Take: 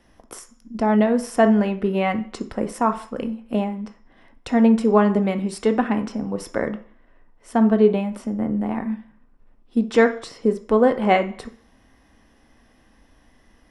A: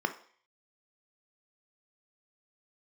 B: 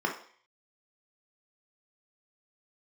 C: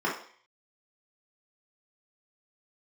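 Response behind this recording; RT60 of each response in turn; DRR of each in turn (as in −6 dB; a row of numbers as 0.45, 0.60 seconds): A; 0.50, 0.50, 0.50 seconds; 7.0, 0.0, −6.0 decibels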